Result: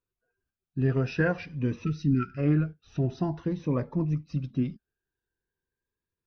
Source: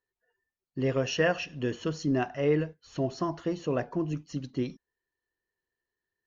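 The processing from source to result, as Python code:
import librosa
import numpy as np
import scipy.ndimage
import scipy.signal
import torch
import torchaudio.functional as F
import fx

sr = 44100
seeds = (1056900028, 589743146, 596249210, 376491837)

y = fx.dynamic_eq(x, sr, hz=1300.0, q=3.6, threshold_db=-52.0, ratio=4.0, max_db=6)
y = fx.spec_erase(y, sr, start_s=1.85, length_s=0.53, low_hz=460.0, high_hz=1300.0)
y = fx.bass_treble(y, sr, bass_db=7, treble_db=-8)
y = fx.formant_shift(y, sr, semitones=-2)
y = fx.notch_cascade(y, sr, direction='rising', hz=0.48)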